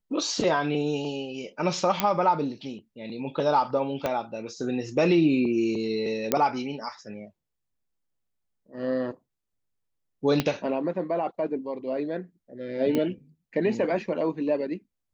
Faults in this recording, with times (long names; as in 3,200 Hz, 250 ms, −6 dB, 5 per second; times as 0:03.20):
0:02.00: click −6 dBFS
0:04.06: click −13 dBFS
0:06.32: click −7 dBFS
0:10.40: click −9 dBFS
0:12.95: click −14 dBFS